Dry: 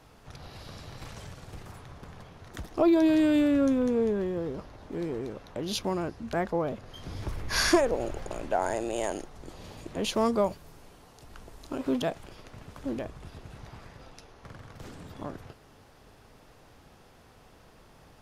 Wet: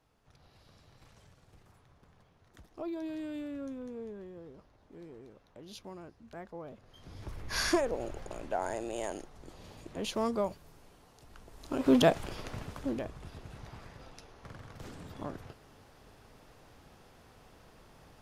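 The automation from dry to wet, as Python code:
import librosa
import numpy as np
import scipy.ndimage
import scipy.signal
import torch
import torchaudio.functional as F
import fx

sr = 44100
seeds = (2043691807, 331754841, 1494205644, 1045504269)

y = fx.gain(x, sr, db=fx.line((6.51, -16.5), (7.52, -6.0), (11.47, -6.0), (12.0, 6.5), (12.54, 6.5), (12.94, -2.0)))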